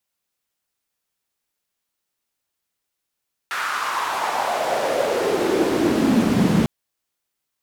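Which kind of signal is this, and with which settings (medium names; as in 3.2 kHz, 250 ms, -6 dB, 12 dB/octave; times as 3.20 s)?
swept filtered noise white, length 3.15 s bandpass, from 1.5 kHz, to 170 Hz, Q 3.5, exponential, gain ramp +18 dB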